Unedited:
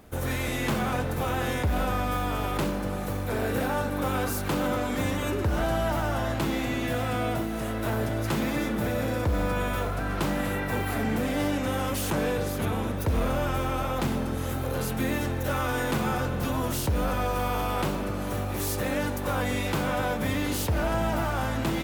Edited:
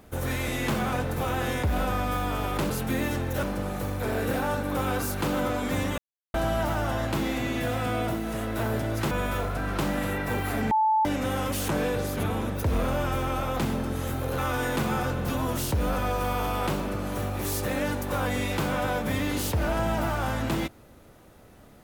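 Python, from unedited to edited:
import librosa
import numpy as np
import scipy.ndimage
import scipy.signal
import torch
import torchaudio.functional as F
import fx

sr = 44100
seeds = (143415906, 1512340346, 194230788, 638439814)

y = fx.edit(x, sr, fx.silence(start_s=5.25, length_s=0.36),
    fx.cut(start_s=8.38, length_s=1.15),
    fx.bleep(start_s=11.13, length_s=0.34, hz=873.0, db=-19.0),
    fx.move(start_s=14.8, length_s=0.73, to_s=2.7), tone=tone)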